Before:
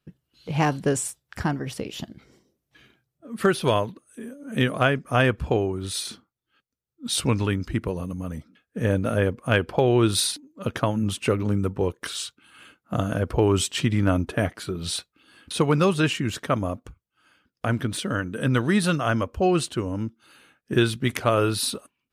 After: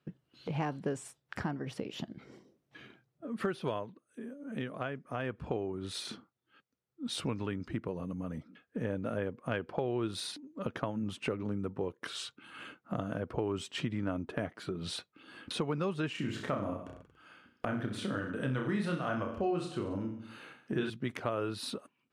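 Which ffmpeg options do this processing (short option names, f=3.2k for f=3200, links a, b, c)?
-filter_complex "[0:a]asettb=1/sr,asplit=3[a][b][c];[a]atrim=end=16.124[d];[b]atrim=start=16.12:end=20.9,asetpts=PTS-STARTPTS,afade=t=in:d=0.004:c=qsin,afade=t=out:st=4.776:d=0.004:c=qsin,aecho=1:1:30|63|99.3|139.2|183.2|231.5|284.6:0.631|0.398|0.251|0.158|0.1|0.0631|0.0398,atrim=end_sample=210798[e];[c]atrim=start=20.896[f];[d][e]acrossfade=d=0.004:c1=hsin:c2=qsin[g];[g][f]acrossfade=d=0.004:c1=qsin:c2=hsin,asplit=3[h][i][j];[h]atrim=end=4.03,asetpts=PTS-STARTPTS,afade=t=out:st=3.63:d=0.4:silence=0.375837[k];[i]atrim=start=4.03:end=5.19,asetpts=PTS-STARTPTS,volume=-8.5dB[l];[j]atrim=start=5.19,asetpts=PTS-STARTPTS,afade=t=in:d=0.4:silence=0.375837[m];[k][l][m]concat=n=3:v=0:a=1,highpass=130,aemphasis=mode=reproduction:type=75kf,acompressor=threshold=-44dB:ratio=2.5,volume=4.5dB"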